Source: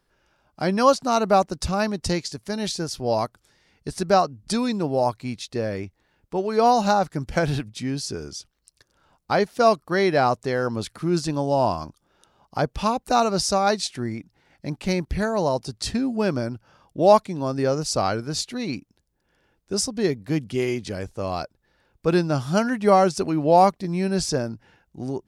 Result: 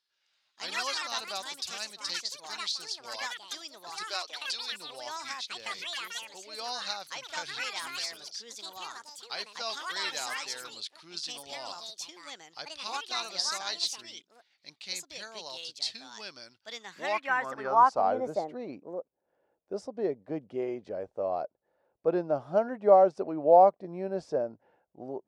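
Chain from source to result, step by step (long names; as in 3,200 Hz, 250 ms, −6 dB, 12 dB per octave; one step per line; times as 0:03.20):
delay with pitch and tempo change per echo 139 ms, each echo +5 semitones, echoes 3
band-pass filter sweep 4,100 Hz → 600 Hz, 0:16.67–0:18.23
0:04.04–0:04.72: high-pass filter 320 Hz 24 dB per octave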